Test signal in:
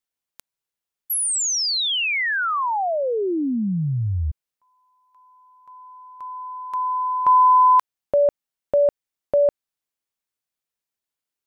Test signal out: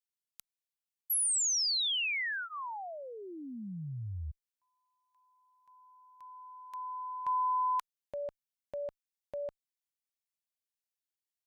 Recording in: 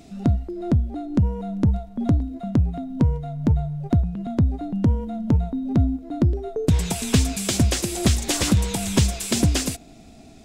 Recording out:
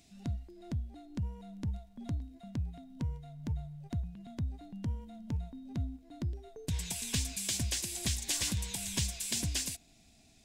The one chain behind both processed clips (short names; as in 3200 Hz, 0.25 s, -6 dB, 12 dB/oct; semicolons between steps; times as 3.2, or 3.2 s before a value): passive tone stack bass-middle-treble 5-5-5; notch 1300 Hz, Q 5.6; gain -1.5 dB